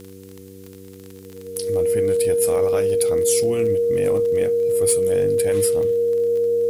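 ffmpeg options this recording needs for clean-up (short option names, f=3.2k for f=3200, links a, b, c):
-af "adeclick=t=4,bandreject=f=95.9:t=h:w=4,bandreject=f=191.8:t=h:w=4,bandreject=f=287.7:t=h:w=4,bandreject=f=383.6:t=h:w=4,bandreject=f=479.5:t=h:w=4,bandreject=f=470:w=30,agate=range=-21dB:threshold=-33dB"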